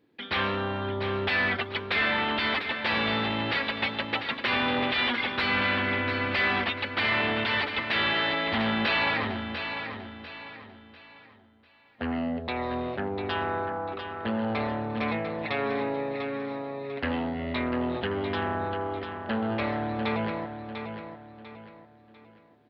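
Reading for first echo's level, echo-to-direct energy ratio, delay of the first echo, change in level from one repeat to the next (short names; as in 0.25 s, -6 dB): -8.0 dB, -7.5 dB, 0.696 s, -9.0 dB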